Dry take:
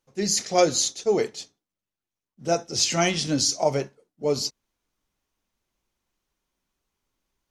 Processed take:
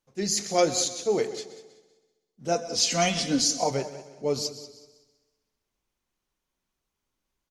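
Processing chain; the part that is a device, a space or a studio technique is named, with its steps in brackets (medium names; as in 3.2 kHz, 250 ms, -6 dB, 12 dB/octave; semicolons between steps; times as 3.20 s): multi-head tape echo (multi-head delay 64 ms, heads second and third, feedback 41%, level -16 dB; wow and flutter 22 cents); 2.55–3.71 s: comb 4.1 ms, depth 69%; feedback delay 183 ms, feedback 40%, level -22.5 dB; trim -3 dB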